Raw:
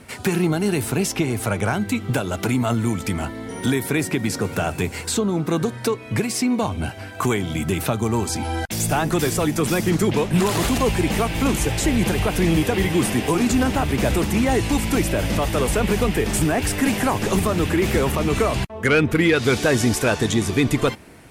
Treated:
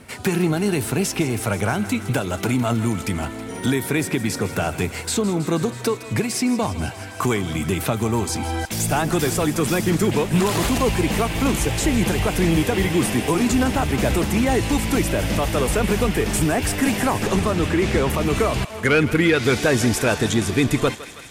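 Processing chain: 17.27–18.1 LPF 6800 Hz 12 dB/oct; on a send: thinning echo 0.161 s, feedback 82%, high-pass 710 Hz, level -14 dB

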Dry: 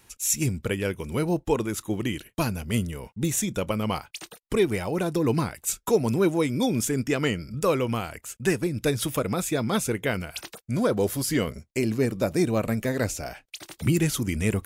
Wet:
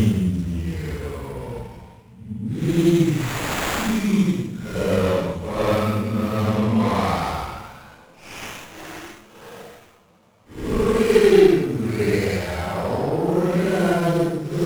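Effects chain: two-slope reverb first 0.28 s, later 2.6 s, from -18 dB, DRR 16.5 dB; Paulstretch 6.2×, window 0.10 s, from 2.79; running maximum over 9 samples; gain +6 dB

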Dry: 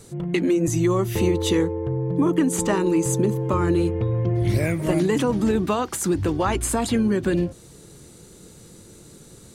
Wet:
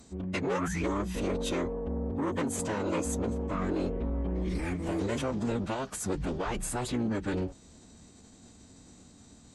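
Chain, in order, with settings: painted sound rise, 0.46–0.83, 680–2600 Hz -28 dBFS; soft clip -19.5 dBFS, distortion -12 dB; formant-preserving pitch shift -11 st; gain -6 dB

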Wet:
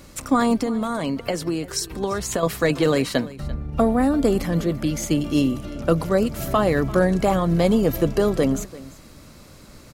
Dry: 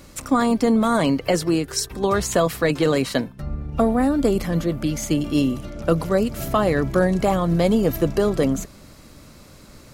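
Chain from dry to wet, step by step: 0.57–2.43 compressor, threshold -21 dBFS, peak gain reduction 7.5 dB; echo 0.341 s -19 dB

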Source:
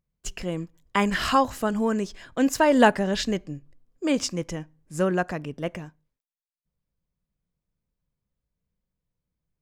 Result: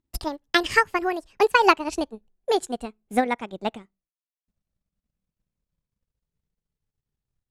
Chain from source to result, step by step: speed glide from 179% -> 77%; LPF 9800 Hz 12 dB/oct; transient shaper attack +7 dB, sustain -10 dB; gain -2 dB

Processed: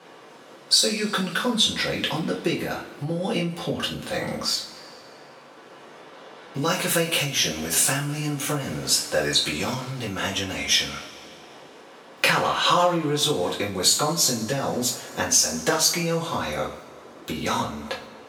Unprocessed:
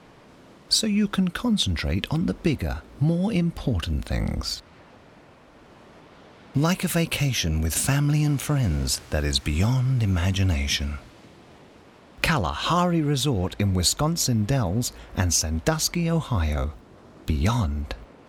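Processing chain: two-slope reverb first 0.31 s, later 2.1 s, from -21 dB, DRR -5 dB; compressor, threshold -13 dBFS, peak gain reduction 7 dB; HPF 330 Hz 12 dB/oct

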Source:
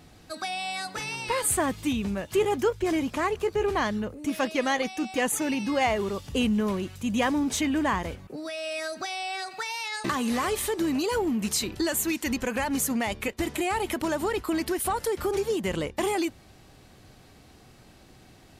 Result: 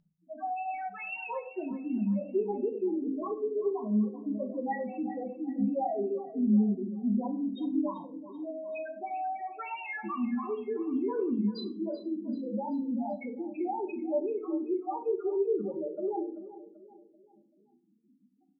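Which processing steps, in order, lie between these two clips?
compressor 3:1, threshold -28 dBFS, peak gain reduction 7.5 dB; loudest bins only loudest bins 2; brick-wall FIR band-pass 180–5200 Hz; feedback echo 0.386 s, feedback 43%, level -15 dB; shoebox room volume 300 m³, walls furnished, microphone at 1.2 m

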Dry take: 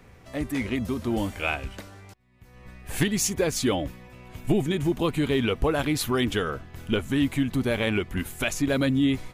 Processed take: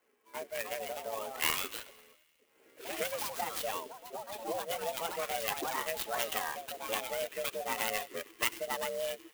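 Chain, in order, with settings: per-bin expansion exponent 1.5; compressor 2.5:1, threshold -34 dBFS, peak gain reduction 10 dB; on a send: thin delay 95 ms, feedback 72%, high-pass 2300 Hz, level -17 dB; on the sum: ring modulator 330 Hz; in parallel at -10.5 dB: backlash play -41 dBFS; on the sum: speaker cabinet 470–5600 Hz, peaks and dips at 490 Hz +3 dB, 1100 Hz +5 dB, 2000 Hz +6 dB, 3000 Hz +9 dB, 5200 Hz +5 dB; echoes that change speed 0.363 s, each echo +3 st, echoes 2, each echo -6 dB; clock jitter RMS 0.053 ms

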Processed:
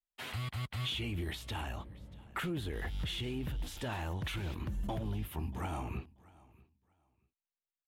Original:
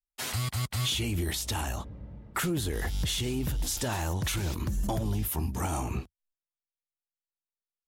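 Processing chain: resonant high shelf 4200 Hz -10 dB, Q 1.5; on a send: feedback echo 0.635 s, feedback 20%, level -23 dB; on the sum: gain -7 dB

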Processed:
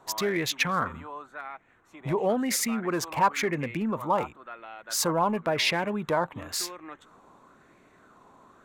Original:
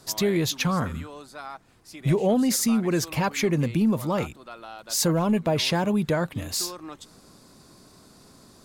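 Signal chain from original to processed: Wiener smoothing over 9 samples; tone controls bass -8 dB, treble +1 dB; LFO bell 0.96 Hz 910–2200 Hz +12 dB; gain -3 dB

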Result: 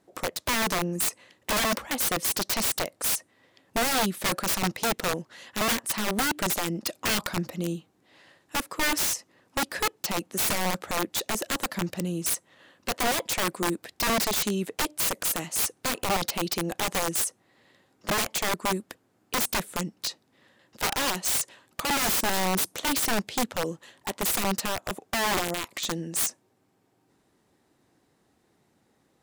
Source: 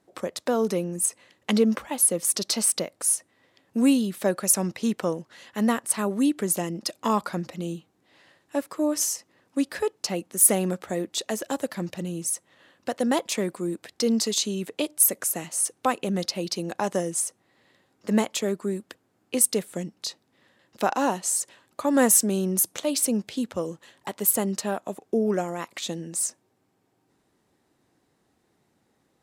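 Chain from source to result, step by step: wrapped overs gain 21.5 dB; gain +1.5 dB

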